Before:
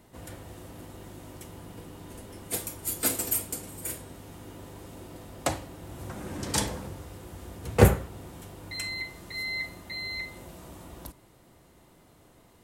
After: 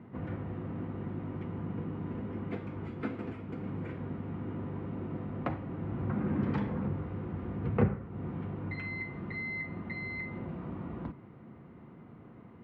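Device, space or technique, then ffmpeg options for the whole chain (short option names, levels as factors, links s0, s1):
bass amplifier: -af "acompressor=threshold=0.0178:ratio=3,highpass=89,equalizer=f=99:t=q:w=4:g=4,equalizer=f=150:t=q:w=4:g=6,equalizer=f=220:t=q:w=4:g=9,equalizer=f=610:t=q:w=4:g=-7,equalizer=f=870:t=q:w=4:g=-4,equalizer=f=1700:t=q:w=4:g=-5,lowpass=f=2000:w=0.5412,lowpass=f=2000:w=1.3066,volume=1.78"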